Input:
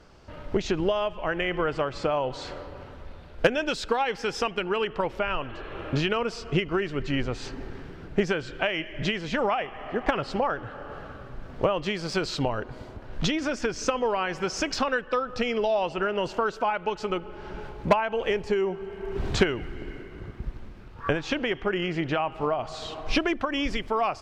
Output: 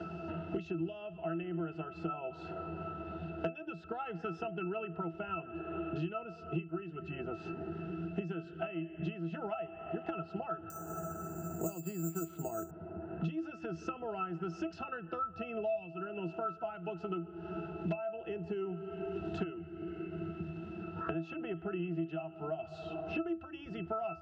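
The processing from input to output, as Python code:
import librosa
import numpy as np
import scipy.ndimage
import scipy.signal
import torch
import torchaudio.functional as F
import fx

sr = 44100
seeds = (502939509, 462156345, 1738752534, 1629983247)

y = scipy.signal.sosfilt(scipy.signal.butter(2, 140.0, 'highpass', fs=sr, output='sos'), x)
y = fx.octave_resonator(y, sr, note='E', decay_s=0.18)
y = fx.resample_bad(y, sr, factor=6, down='none', up='zero_stuff', at=(10.7, 12.71))
y = fx.band_squash(y, sr, depth_pct=100)
y = F.gain(torch.from_numpy(y), 1.5).numpy()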